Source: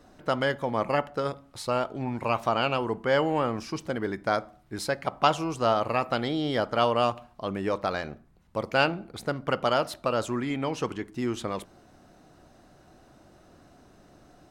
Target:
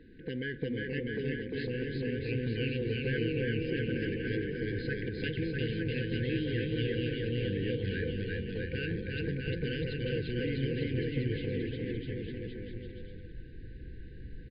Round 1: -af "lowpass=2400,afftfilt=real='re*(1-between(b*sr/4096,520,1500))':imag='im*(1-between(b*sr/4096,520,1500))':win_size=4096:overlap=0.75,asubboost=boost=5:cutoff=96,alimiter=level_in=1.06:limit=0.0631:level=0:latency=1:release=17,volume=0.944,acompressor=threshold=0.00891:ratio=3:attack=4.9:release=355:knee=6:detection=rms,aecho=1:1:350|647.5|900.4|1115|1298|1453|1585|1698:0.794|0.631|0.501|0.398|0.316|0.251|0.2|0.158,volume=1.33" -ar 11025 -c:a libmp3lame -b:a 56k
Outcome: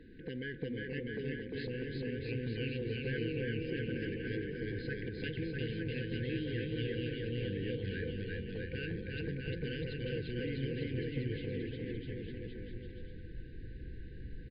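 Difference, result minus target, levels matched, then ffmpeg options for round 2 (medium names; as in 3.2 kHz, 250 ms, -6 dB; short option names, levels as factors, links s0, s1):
compression: peak gain reduction +4.5 dB
-af "lowpass=2400,afftfilt=real='re*(1-between(b*sr/4096,520,1500))':imag='im*(1-between(b*sr/4096,520,1500))':win_size=4096:overlap=0.75,asubboost=boost=5:cutoff=96,alimiter=level_in=1.06:limit=0.0631:level=0:latency=1:release=17,volume=0.944,acompressor=threshold=0.02:ratio=3:attack=4.9:release=355:knee=6:detection=rms,aecho=1:1:350|647.5|900.4|1115|1298|1453|1585|1698:0.794|0.631|0.501|0.398|0.316|0.251|0.2|0.158,volume=1.33" -ar 11025 -c:a libmp3lame -b:a 56k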